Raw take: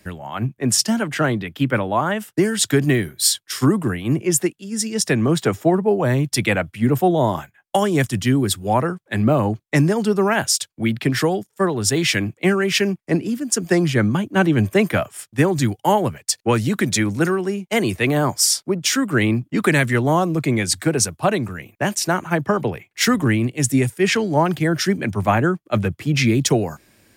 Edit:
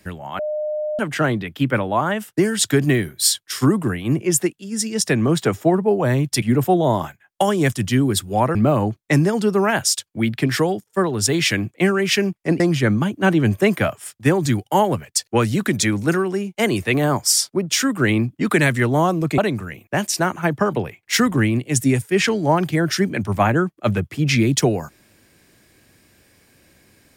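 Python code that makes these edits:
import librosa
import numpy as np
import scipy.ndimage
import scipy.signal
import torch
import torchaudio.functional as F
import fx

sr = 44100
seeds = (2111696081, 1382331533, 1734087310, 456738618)

y = fx.edit(x, sr, fx.bleep(start_s=0.39, length_s=0.6, hz=607.0, db=-21.0),
    fx.cut(start_s=6.42, length_s=0.34),
    fx.cut(start_s=8.89, length_s=0.29),
    fx.cut(start_s=13.23, length_s=0.5),
    fx.cut(start_s=20.51, length_s=0.75), tone=tone)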